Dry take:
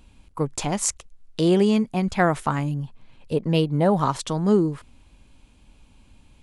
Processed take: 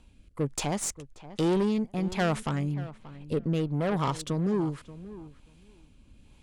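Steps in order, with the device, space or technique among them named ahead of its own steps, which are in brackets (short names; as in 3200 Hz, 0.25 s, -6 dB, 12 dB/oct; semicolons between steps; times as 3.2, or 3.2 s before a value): overdriven rotary cabinet (tube stage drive 21 dB, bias 0.4; rotary speaker horn 1.2 Hz); darkening echo 0.582 s, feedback 15%, low-pass 2300 Hz, level -16 dB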